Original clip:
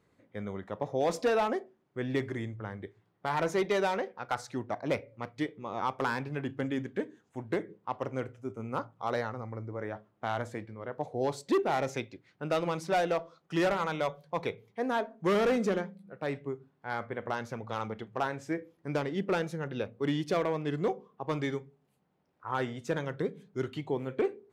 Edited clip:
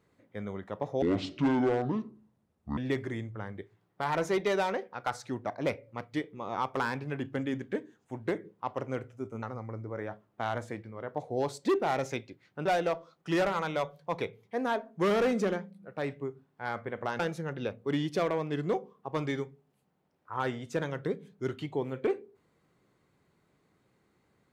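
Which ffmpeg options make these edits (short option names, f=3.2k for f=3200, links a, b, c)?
-filter_complex "[0:a]asplit=6[a][b][c][d][e][f];[a]atrim=end=1.024[g];[b]atrim=start=1.02:end=2.02,asetpts=PTS-STARTPTS,asetrate=25137,aresample=44100,atrim=end_sample=77368,asetpts=PTS-STARTPTS[h];[c]atrim=start=2.016:end=8.672[i];[d]atrim=start=9.258:end=12.492[j];[e]atrim=start=12.898:end=17.442[k];[f]atrim=start=19.338[l];[g][h]acrossfade=d=0.004:c1=hsin:c2=hsin[m];[m][i]acrossfade=d=0.004:c1=hsin:c2=hsin[n];[n][j]acrossfade=d=0.004:c1=hsin:c2=hsin[o];[o][k]acrossfade=d=0.004:c1=hsin:c2=hsin[p];[p][l]acrossfade=d=0.004:c1=hsin:c2=hsin"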